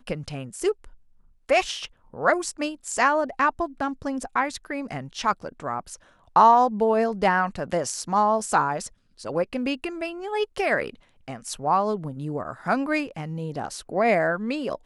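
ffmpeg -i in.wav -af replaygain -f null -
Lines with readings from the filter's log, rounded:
track_gain = +4.0 dB
track_peak = 0.413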